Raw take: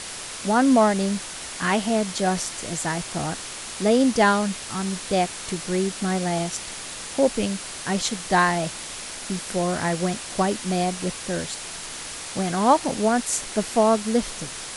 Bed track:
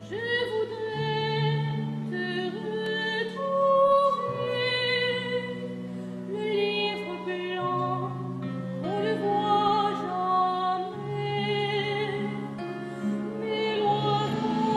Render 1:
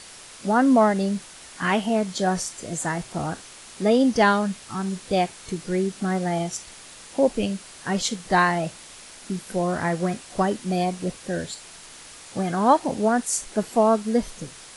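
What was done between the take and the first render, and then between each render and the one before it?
noise print and reduce 9 dB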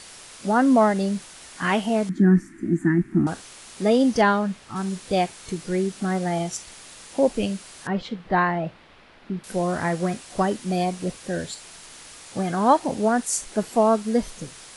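2.09–3.27 EQ curve 120 Hz 0 dB, 190 Hz +12 dB, 340 Hz +15 dB, 500 Hz -25 dB, 1200 Hz -8 dB, 1800 Hz +2 dB, 3100 Hz -21 dB, 4500 Hz -25 dB, 12000 Hz -18 dB; 4.21–4.76 high shelf 4500 Hz -12 dB; 7.87–9.44 air absorption 380 m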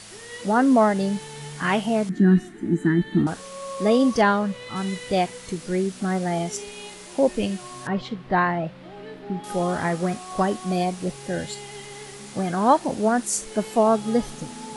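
add bed track -12.5 dB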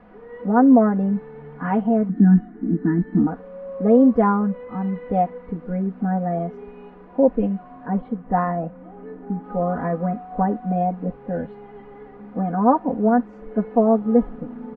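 Bessel low-pass 950 Hz, order 4; comb 4.1 ms, depth 98%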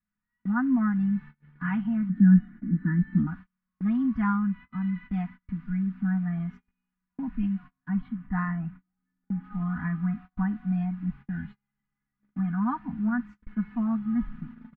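Chebyshev band-stop 160–1600 Hz, order 2; gate -41 dBFS, range -34 dB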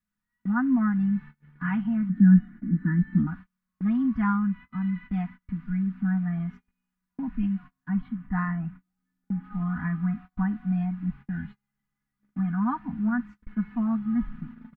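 gain +1 dB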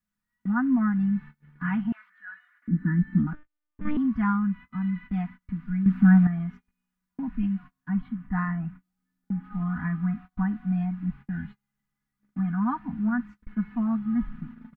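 1.92–2.68 HPF 1100 Hz 24 dB/oct; 3.33–3.97 monotone LPC vocoder at 8 kHz 300 Hz; 5.86–6.27 gain +9.5 dB

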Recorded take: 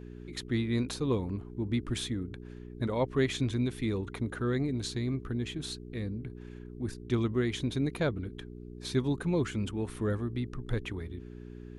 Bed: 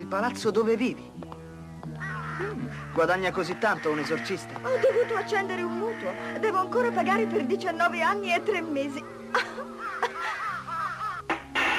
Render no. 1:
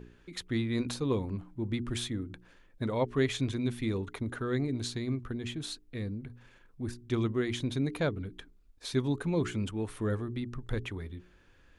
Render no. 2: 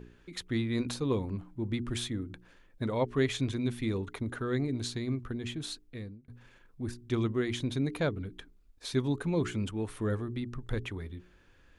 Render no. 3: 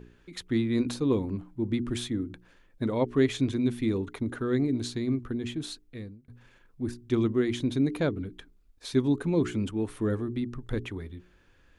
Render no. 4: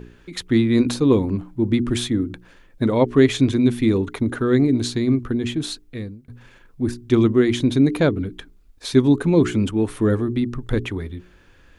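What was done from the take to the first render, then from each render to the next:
de-hum 60 Hz, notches 7
5.81–6.28 fade out
dynamic EQ 290 Hz, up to +7 dB, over -45 dBFS, Q 1.2
gain +9.5 dB; limiter -3 dBFS, peak gain reduction 1 dB

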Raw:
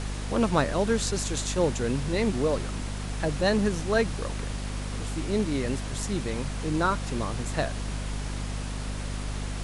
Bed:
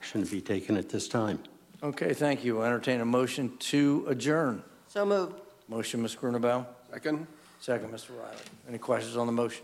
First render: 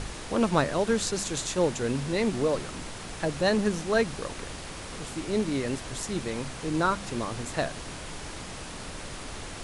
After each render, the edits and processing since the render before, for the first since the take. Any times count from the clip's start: de-hum 50 Hz, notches 5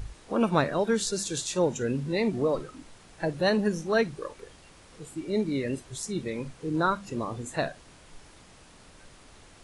noise print and reduce 14 dB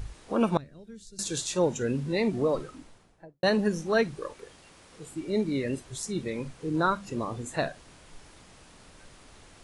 0.57–1.19 passive tone stack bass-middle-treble 10-0-1; 2.64–3.43 studio fade out; 4.34–5.06 low shelf 79 Hz -9.5 dB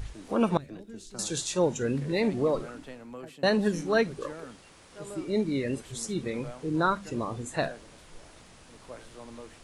add bed -16.5 dB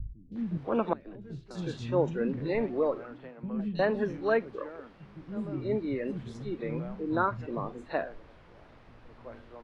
air absorption 340 m; three bands offset in time lows, highs, mids 0.32/0.36 s, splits 220/3300 Hz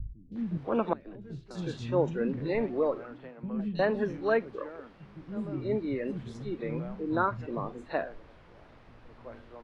nothing audible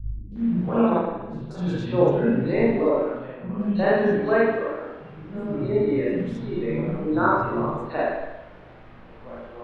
spring tank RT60 1 s, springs 39/56 ms, chirp 40 ms, DRR -7.5 dB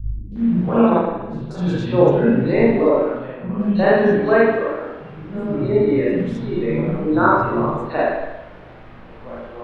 gain +5.5 dB; limiter -1 dBFS, peak gain reduction 1 dB

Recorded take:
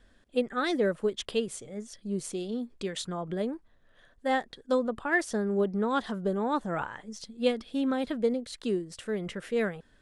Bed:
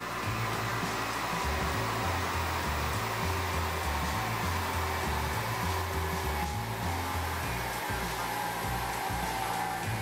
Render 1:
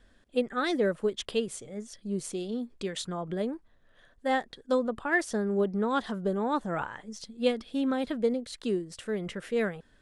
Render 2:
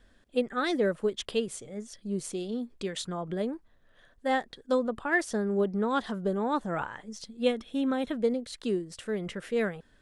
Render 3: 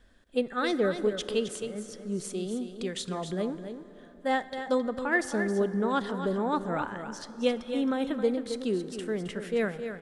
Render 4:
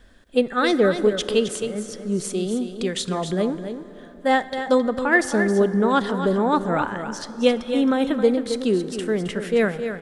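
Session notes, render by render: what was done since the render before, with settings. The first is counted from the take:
nothing audible
7.43–8.14 Butterworth band-stop 4700 Hz, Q 4.8
on a send: echo 0.267 s -9 dB; on the sum: plate-style reverb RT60 4.6 s, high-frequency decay 0.45×, DRR 14.5 dB
gain +8.5 dB

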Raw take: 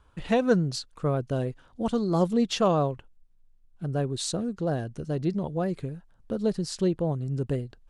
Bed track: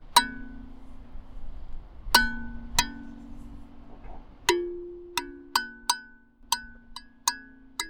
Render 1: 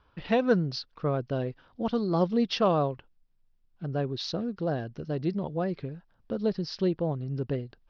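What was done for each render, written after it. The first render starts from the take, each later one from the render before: elliptic low-pass 5300 Hz, stop band 40 dB; low shelf 80 Hz -8 dB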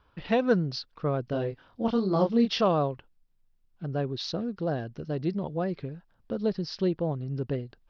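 1.25–2.61 doubler 26 ms -4.5 dB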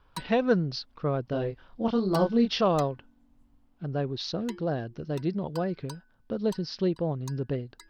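add bed track -20 dB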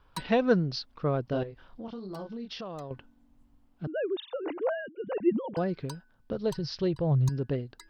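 1.43–2.91 compressor 4:1, threshold -39 dBFS; 3.87–5.57 sine-wave speech; 6.32–7.29 resonant low shelf 160 Hz +6.5 dB, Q 3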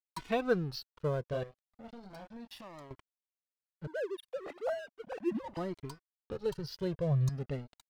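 crossover distortion -44 dBFS; cascading flanger rising 0.35 Hz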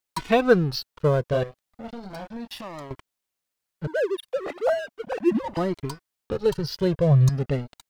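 gain +12 dB

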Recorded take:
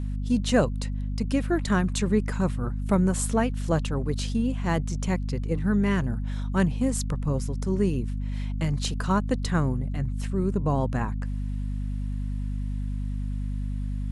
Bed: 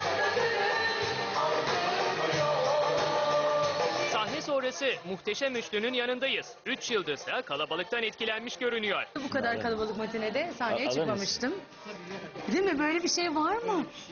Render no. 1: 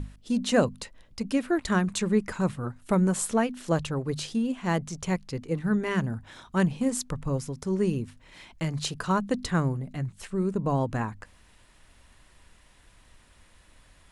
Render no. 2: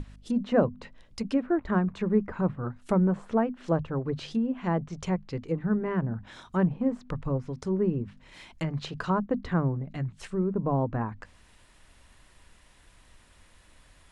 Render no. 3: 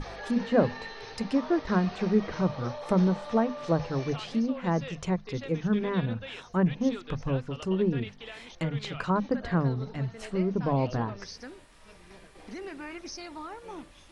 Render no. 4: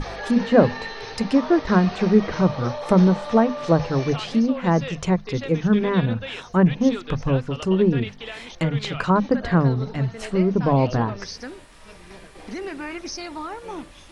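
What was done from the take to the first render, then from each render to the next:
notches 50/100/150/200/250 Hz
treble ducked by the level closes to 1200 Hz, closed at -24 dBFS; notches 50/100/150/200/250 Hz
add bed -12.5 dB
gain +8 dB

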